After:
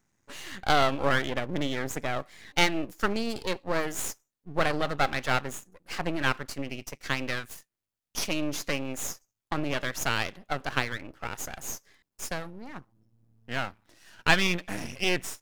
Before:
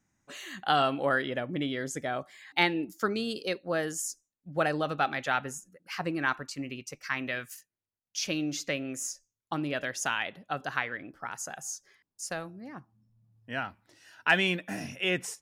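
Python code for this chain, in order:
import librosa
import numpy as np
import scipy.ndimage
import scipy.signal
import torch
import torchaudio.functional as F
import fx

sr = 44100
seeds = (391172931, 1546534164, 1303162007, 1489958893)

y = np.maximum(x, 0.0)
y = y * 10.0 ** (5.5 / 20.0)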